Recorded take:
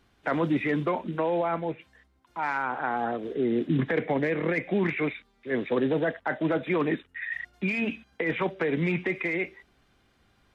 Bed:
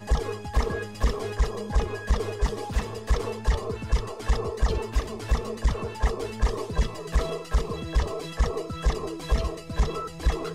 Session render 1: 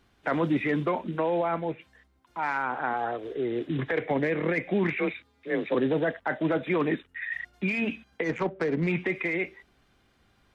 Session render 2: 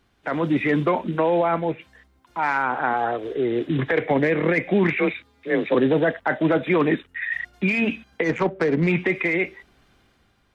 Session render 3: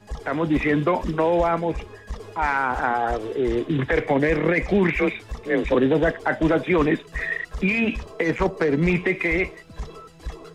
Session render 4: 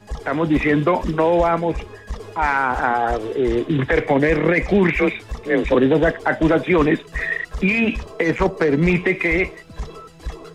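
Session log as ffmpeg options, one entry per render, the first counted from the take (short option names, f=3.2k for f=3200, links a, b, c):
-filter_complex "[0:a]asettb=1/sr,asplit=3[a][b][c];[a]atrim=end=2.934[d];[b]atrim=start=2.93:end=4.11,asetpts=PTS-STARTPTS,afade=t=in:d=0.004:c=qsin,afade=t=out:st=1.176:d=0.004:c=qsin,equalizer=f=210:t=o:w=0.66:g=-13.5[e];[c]atrim=start=4.106[f];[d][e]acrossfade=d=0.004:c1=hsin:c2=qsin[g];[g][f]acrossfade=d=0.004:c1=qsin:c2=hsin,asettb=1/sr,asplit=3[h][i][j];[h]atrim=end=4.974[k];[i]atrim=start=4.97:end=5.75,asetpts=PTS-STARTPTS,afade=t=in:d=0.004:c=qsin,afade=t=out:st=0.776:d=0.004:c=qsin,afreqshift=34[l];[j]atrim=start=5.746[m];[k][l]acrossfade=d=0.004:c1=hsin:c2=qsin[n];[n][m]acrossfade=d=0.004:c1=qsin:c2=hsin,asplit=3[o][p][q];[o]afade=t=out:st=8.23:d=0.02[r];[p]adynamicsmooth=sensitivity=1.5:basefreq=1k,afade=t=in:st=8.23:d=0.02,afade=t=out:st=8.86:d=0.02[s];[q]afade=t=in:st=8.86:d=0.02[t];[r][s][t]amix=inputs=3:normalize=0"
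-af "dynaudnorm=f=110:g=9:m=6.5dB"
-filter_complex "[1:a]volume=-9.5dB[a];[0:a][a]amix=inputs=2:normalize=0"
-af "volume=3.5dB"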